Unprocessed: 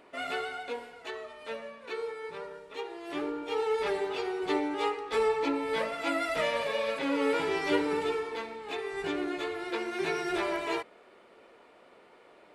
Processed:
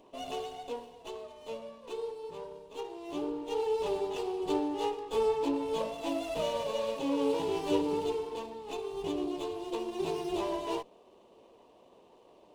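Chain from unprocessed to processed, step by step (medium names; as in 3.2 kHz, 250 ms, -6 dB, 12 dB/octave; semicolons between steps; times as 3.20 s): elliptic band-stop 1.1–2.7 kHz; bass shelf 130 Hz +6 dB; sliding maximum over 5 samples; trim -1 dB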